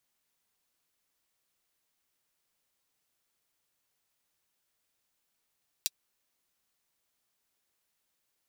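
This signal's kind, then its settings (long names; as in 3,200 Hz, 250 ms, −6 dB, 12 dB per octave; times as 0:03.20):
closed synth hi-hat, high-pass 3,800 Hz, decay 0.04 s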